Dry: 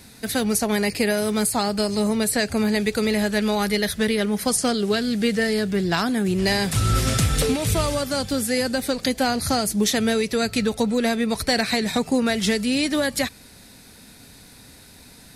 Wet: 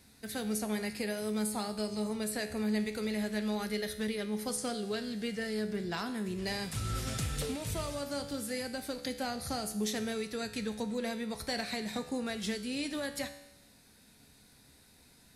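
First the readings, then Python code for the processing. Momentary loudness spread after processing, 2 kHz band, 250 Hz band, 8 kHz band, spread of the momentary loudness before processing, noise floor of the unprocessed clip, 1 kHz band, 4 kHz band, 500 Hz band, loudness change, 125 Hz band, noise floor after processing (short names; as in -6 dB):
3 LU, -14.0 dB, -13.0 dB, -14.0 dB, 2 LU, -47 dBFS, -14.0 dB, -14.0 dB, -13.5 dB, -13.5 dB, -14.5 dB, -61 dBFS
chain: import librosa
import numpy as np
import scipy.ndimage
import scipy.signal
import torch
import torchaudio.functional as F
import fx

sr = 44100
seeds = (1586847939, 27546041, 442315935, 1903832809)

y = fx.comb_fb(x, sr, f0_hz=71.0, decay_s=0.9, harmonics='all', damping=0.0, mix_pct=70)
y = F.gain(torch.from_numpy(y), -6.0).numpy()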